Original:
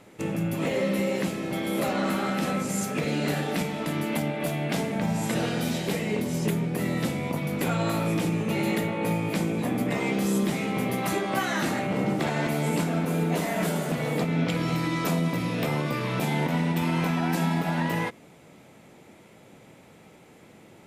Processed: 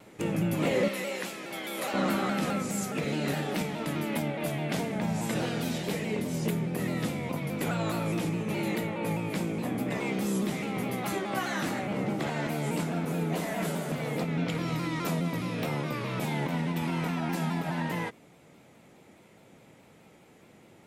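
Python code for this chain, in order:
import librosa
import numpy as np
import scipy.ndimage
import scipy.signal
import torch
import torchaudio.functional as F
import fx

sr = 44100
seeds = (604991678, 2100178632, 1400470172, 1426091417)

y = fx.highpass(x, sr, hz=1000.0, slope=6, at=(0.88, 1.94))
y = fx.rider(y, sr, range_db=10, speed_s=2.0)
y = fx.vibrato_shape(y, sr, shape='saw_down', rate_hz=4.8, depth_cents=100.0)
y = F.gain(torch.from_numpy(y), -4.0).numpy()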